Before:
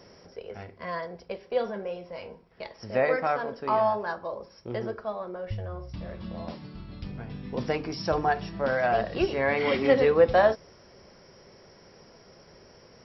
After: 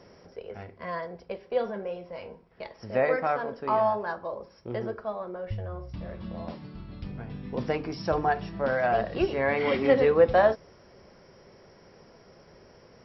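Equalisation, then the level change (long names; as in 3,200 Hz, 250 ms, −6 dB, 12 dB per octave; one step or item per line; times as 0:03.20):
low-pass filter 3,200 Hz 6 dB per octave
0.0 dB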